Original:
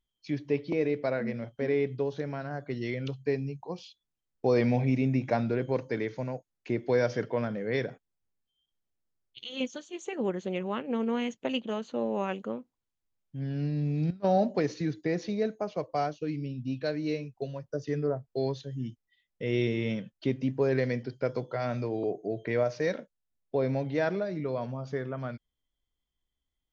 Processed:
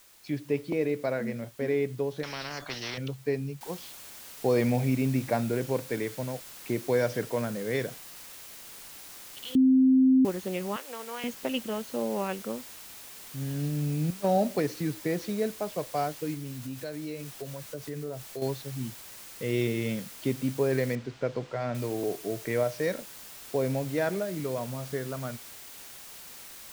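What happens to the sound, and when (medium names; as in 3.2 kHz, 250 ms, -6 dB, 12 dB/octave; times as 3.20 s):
2.23–2.98 s: spectrum-flattening compressor 4:1
3.61 s: noise floor step -57 dB -46 dB
9.55–10.25 s: bleep 261 Hz -16.5 dBFS
10.76–11.24 s: high-pass 760 Hz
16.34–18.42 s: compression 2.5:1, threshold -35 dBFS
20.95–21.75 s: distance through air 150 m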